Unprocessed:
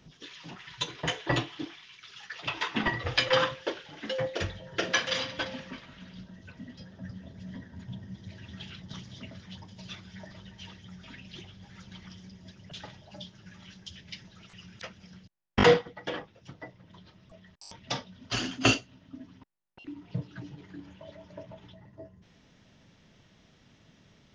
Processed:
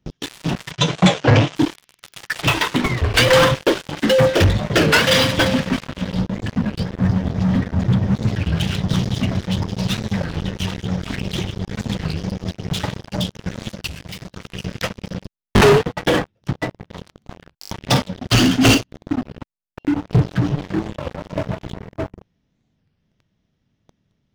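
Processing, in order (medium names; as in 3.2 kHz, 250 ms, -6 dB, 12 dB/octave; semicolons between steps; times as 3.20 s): bass shelf 340 Hz +10.5 dB; waveshaping leveller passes 1; 2.54–3.15 s: compression 10:1, threshold -29 dBFS, peak gain reduction 14 dB; waveshaping leveller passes 5; 0.71–1.56 s: cabinet simulation 100–6800 Hz, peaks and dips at 160 Hz +6 dB, 350 Hz -5 dB, 600 Hz +5 dB, 1.8 kHz -3 dB, 4.4 kHz -5 dB; 13.89–14.34 s: hard clipper -23 dBFS, distortion -29 dB; warped record 33 1/3 rpm, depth 250 cents; trim -4 dB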